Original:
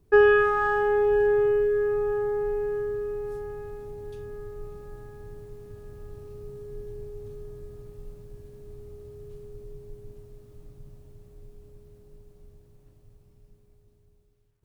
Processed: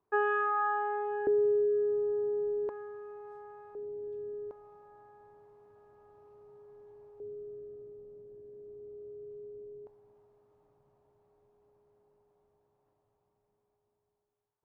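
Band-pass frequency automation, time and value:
band-pass, Q 2.6
1000 Hz
from 1.27 s 320 Hz
from 2.69 s 1000 Hz
from 3.75 s 410 Hz
from 4.51 s 900 Hz
from 7.2 s 420 Hz
from 9.87 s 870 Hz

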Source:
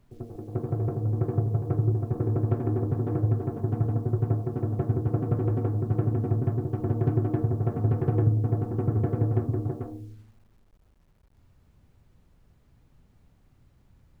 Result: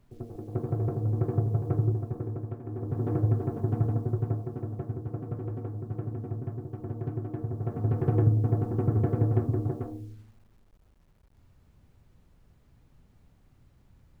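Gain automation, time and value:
1.82 s -1 dB
2.62 s -13 dB
3.06 s -0.5 dB
3.84 s -0.5 dB
4.97 s -9 dB
7.33 s -9 dB
8.13 s 0 dB

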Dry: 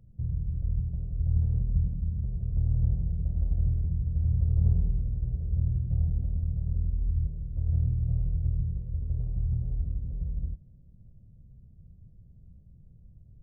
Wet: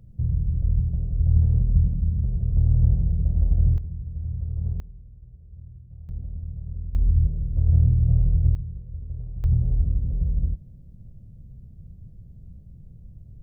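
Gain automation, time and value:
+7 dB
from 3.78 s -4 dB
from 4.8 s -16 dB
from 6.09 s -4 dB
from 6.95 s +8.5 dB
from 8.55 s -3 dB
from 9.44 s +8.5 dB

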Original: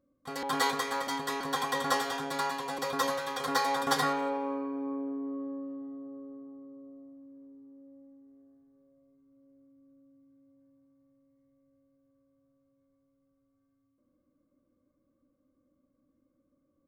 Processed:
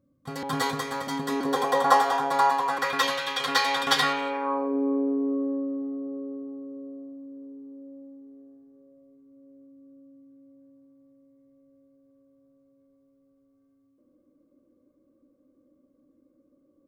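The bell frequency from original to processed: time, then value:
bell +13.5 dB 1.6 oct
1.03 s 130 Hz
1.9 s 840 Hz
2.59 s 840 Hz
3.05 s 2900 Hz
4.29 s 2900 Hz
4.75 s 390 Hz

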